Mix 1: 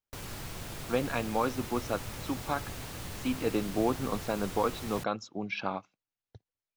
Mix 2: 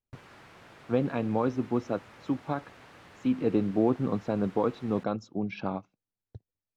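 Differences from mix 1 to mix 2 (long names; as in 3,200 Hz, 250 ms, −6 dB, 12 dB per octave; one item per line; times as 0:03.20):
background: add resonant band-pass 1,700 Hz, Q 1
master: add tilt shelving filter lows +7.5 dB, about 690 Hz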